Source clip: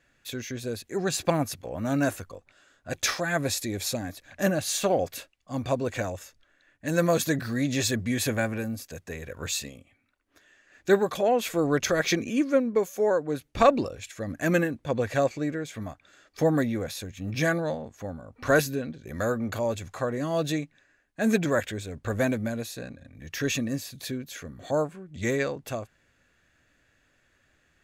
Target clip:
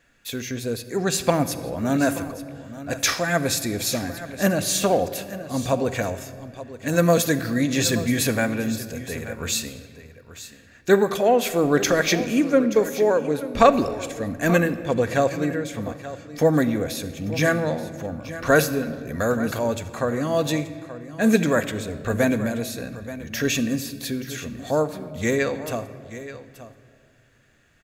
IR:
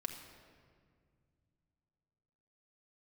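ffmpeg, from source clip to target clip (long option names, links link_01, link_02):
-filter_complex "[0:a]aecho=1:1:879:0.188,asplit=2[link_01][link_02];[1:a]atrim=start_sample=2205,highshelf=frequency=11000:gain=9.5[link_03];[link_02][link_03]afir=irnorm=-1:irlink=0,volume=-1dB[link_04];[link_01][link_04]amix=inputs=2:normalize=0"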